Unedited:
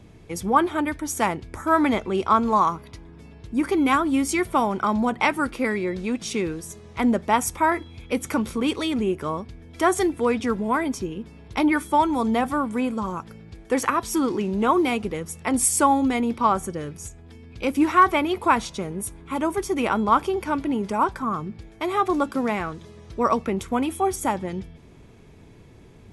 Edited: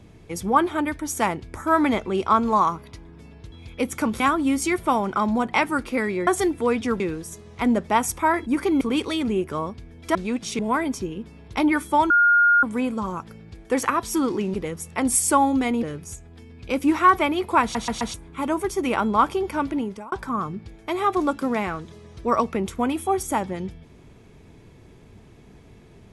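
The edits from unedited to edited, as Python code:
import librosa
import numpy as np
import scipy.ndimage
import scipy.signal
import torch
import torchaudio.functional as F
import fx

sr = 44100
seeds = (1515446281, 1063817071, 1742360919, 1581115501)

y = fx.edit(x, sr, fx.swap(start_s=3.52, length_s=0.35, other_s=7.84, other_length_s=0.68),
    fx.swap(start_s=5.94, length_s=0.44, other_s=9.86, other_length_s=0.73),
    fx.bleep(start_s=12.1, length_s=0.53, hz=1420.0, db=-13.0),
    fx.cut(start_s=14.54, length_s=0.49),
    fx.cut(start_s=16.32, length_s=0.44),
    fx.stutter_over(start_s=18.55, slice_s=0.13, count=4),
    fx.fade_out_span(start_s=20.67, length_s=0.38), tone=tone)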